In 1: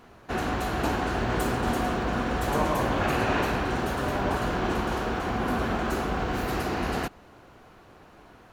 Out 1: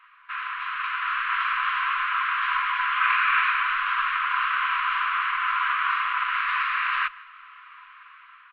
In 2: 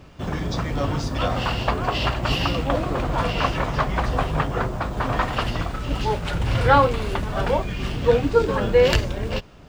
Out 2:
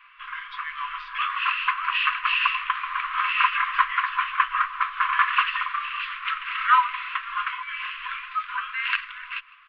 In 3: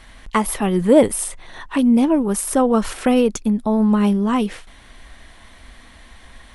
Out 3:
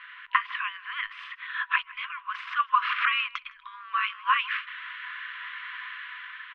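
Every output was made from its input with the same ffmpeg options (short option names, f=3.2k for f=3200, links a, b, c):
-filter_complex "[0:a]asplit=2[a][b];[b]acompressor=threshold=-27dB:ratio=6,volume=0dB[c];[a][c]amix=inputs=2:normalize=0,lowshelf=f=410:g=-11.5,asplit=2[d][e];[e]adelay=157.4,volume=-21dB,highshelf=f=4k:g=-3.54[f];[d][f]amix=inputs=2:normalize=0,dynaudnorm=f=290:g=7:m=8dB,afftfilt=real='re*(1-between(b*sr/4096,150,1100))':imag='im*(1-between(b*sr/4096,150,1100))':win_size=4096:overlap=0.75,bandreject=f=60:t=h:w=6,bandreject=f=120:t=h:w=6,bandreject=f=180:t=h:w=6,bandreject=f=240:t=h:w=6,highpass=f=230:t=q:w=0.5412,highpass=f=230:t=q:w=1.307,lowpass=f=3k:t=q:w=0.5176,lowpass=f=3k:t=q:w=0.7071,lowpass=f=3k:t=q:w=1.932,afreqshift=-120"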